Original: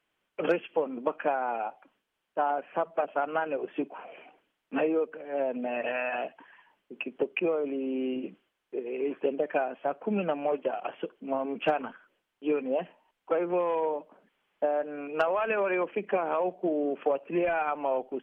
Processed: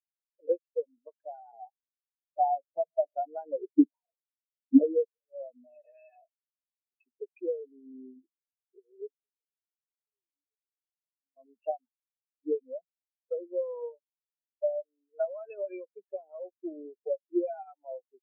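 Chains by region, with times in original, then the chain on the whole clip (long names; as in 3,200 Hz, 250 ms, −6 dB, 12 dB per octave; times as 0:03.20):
0:01.52–0:04.84: mu-law and A-law mismatch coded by mu + low-pass that shuts in the quiet parts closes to 310 Hz, open at −28 dBFS + spectral tilt −3.5 dB per octave
0:09.07–0:11.37: flat-topped band-pass 350 Hz, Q 2.1 + downward compressor, threshold −43 dBFS
whole clip: high-shelf EQ 2,400 Hz +6 dB; every bin expanded away from the loudest bin 4 to 1; level +4 dB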